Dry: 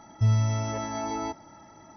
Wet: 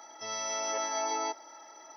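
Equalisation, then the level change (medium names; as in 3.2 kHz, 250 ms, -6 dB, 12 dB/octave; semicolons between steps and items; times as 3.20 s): high-pass 410 Hz 24 dB/octave; treble shelf 4.5 kHz +11 dB; 0.0 dB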